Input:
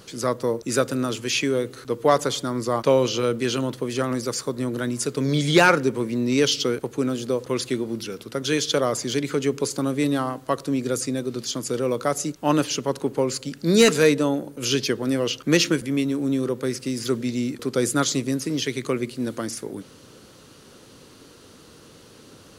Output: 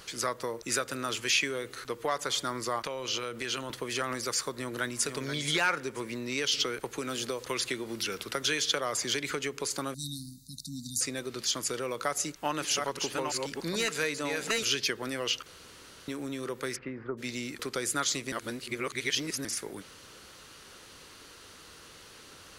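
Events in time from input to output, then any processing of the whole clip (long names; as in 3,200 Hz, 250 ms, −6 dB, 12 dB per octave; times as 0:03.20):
0:02.79–0:03.70: downward compressor, threshold −26 dBFS
0:04.51–0:05.11: delay throw 480 ms, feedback 20%, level −6.5 dB
0:06.53–0:09.31: multiband upward and downward compressor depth 40%
0:09.94–0:11.01: linear-phase brick-wall band-stop 270–3,600 Hz
0:12.01–0:14.72: delay that plays each chunk backwards 437 ms, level −5 dB
0:15.46–0:16.08: fill with room tone
0:16.75–0:17.17: low-pass filter 2,600 Hz → 1,000 Hz 24 dB per octave
0:18.32–0:19.45: reverse
whole clip: downward compressor 6 to 1, threshold −23 dBFS; octave-band graphic EQ 125/250/500/2,000 Hz −9/−9/−5/+4 dB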